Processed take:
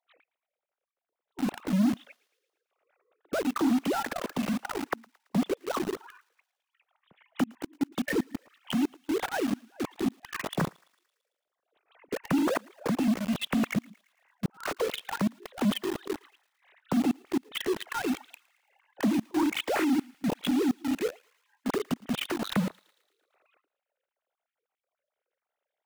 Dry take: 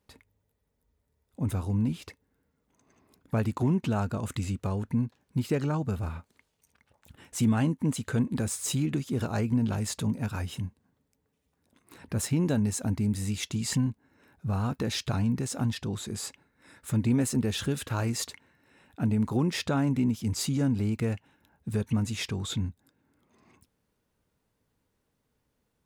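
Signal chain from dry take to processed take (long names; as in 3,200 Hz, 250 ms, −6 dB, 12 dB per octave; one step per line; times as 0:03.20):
three sine waves on the formant tracks
formants moved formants +3 semitones
gate with flip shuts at −20 dBFS, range −28 dB
in parallel at −4.5 dB: log-companded quantiser 2 bits
on the sum: feedback echo with a high-pass in the loop 112 ms, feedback 61%, high-pass 1,200 Hz, level −23 dB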